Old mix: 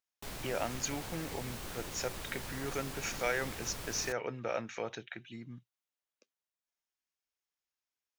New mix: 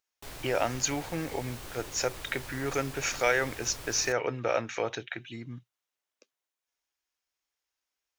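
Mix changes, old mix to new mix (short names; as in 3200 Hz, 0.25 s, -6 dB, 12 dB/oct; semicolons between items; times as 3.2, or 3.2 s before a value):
speech +7.5 dB; master: add bell 200 Hz -12.5 dB 0.26 oct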